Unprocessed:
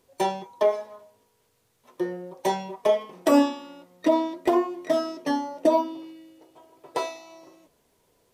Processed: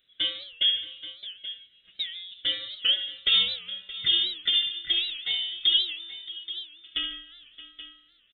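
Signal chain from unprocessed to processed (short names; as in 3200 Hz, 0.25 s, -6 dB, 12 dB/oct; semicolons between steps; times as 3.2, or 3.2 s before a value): inverted band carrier 3900 Hz; fixed phaser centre 2200 Hz, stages 4; on a send: tapped delay 69/147/622/828 ms -9/-15/-16.5/-13.5 dB; on the sum: record warp 78 rpm, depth 160 cents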